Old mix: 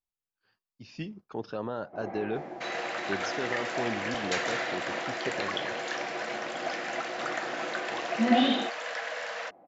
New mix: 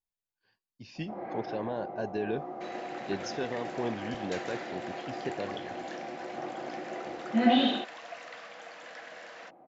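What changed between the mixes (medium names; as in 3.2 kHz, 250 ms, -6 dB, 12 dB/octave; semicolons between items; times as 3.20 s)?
speech: add Butterworth band-stop 1.3 kHz, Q 4.5; first sound: entry -0.85 s; second sound -11.0 dB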